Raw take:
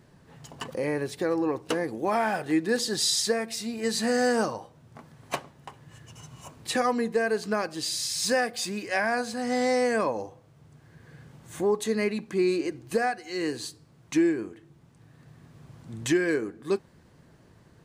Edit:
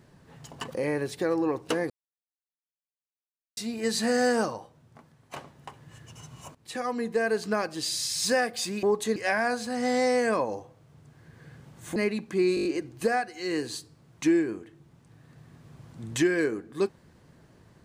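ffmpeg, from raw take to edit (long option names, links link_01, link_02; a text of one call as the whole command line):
ffmpeg -i in.wav -filter_complex "[0:a]asplit=13[link_01][link_02][link_03][link_04][link_05][link_06][link_07][link_08][link_09][link_10][link_11][link_12][link_13];[link_01]atrim=end=1.9,asetpts=PTS-STARTPTS,afade=type=out:start_time=1.896:duration=0.004:curve=hsin[link_14];[link_02]atrim=start=1.9:end=3.57,asetpts=PTS-STARTPTS,volume=0[link_15];[link_03]atrim=start=3.57:end=5.36,asetpts=PTS-STARTPTS,afade=type=in:duration=0.004:curve=hsin,afade=type=out:start_time=0.71:duration=1.08:silence=0.266073[link_16];[link_04]atrim=start=5.36:end=6.55,asetpts=PTS-STARTPTS,afade=type=in:duration=0.004:curve=hsin:silence=0.266073,afade=type=out:start_time=1.186:duration=0.004:curve=hsin:silence=0.133352[link_17];[link_05]atrim=start=6.55:end=8.832,asetpts=PTS-STARTPTS,afade=type=in:duration=0.72:silence=0.133352[link_18];[link_06]atrim=start=11.628:end=11.962[link_19];[link_07]atrim=start=8.828:end=11.632[link_20];[link_08]atrim=start=11.958:end=12.572[link_21];[link_09]atrim=start=12.548:end=12.572[link_22];[link_10]atrim=start=12.548:end=12.572[link_23];[link_11]atrim=start=12.548:end=12.572[link_24];[link_12]atrim=start=12.548:end=12.572[link_25];[link_13]atrim=start=12.548[link_26];[link_14][link_15][link_16][link_17][link_18]concat=n=5:v=0:a=1[link_27];[link_27][link_19]acrossfade=duration=0.004:curve1=hsin:curve2=hsin[link_28];[link_28][link_20]acrossfade=duration=0.004:curve1=hsin:curve2=hsin[link_29];[link_29][link_21]acrossfade=duration=0.004:curve1=hsin:curve2=hsin[link_30];[link_30][link_22]acrossfade=duration=0.004:curve1=hsin:curve2=hsin[link_31];[link_31][link_23]acrossfade=duration=0.004:curve1=hsin:curve2=hsin[link_32];[link_32][link_24]acrossfade=duration=0.004:curve1=hsin:curve2=hsin[link_33];[link_33][link_25]acrossfade=duration=0.004:curve1=hsin:curve2=hsin[link_34];[link_34][link_26]acrossfade=duration=0.004:curve1=hsin:curve2=hsin" out.wav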